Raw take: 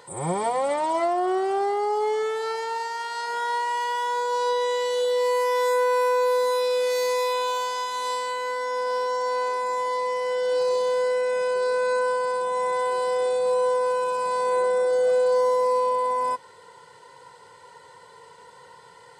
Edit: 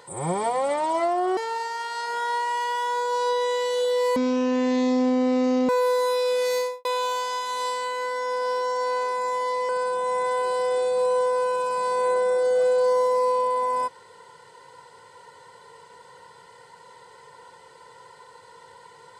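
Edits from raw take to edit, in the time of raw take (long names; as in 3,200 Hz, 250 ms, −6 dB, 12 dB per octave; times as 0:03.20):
0:01.37–0:02.57: remove
0:05.36–0:06.14: play speed 51%
0:07.01–0:07.30: fade out and dull
0:10.14–0:12.17: remove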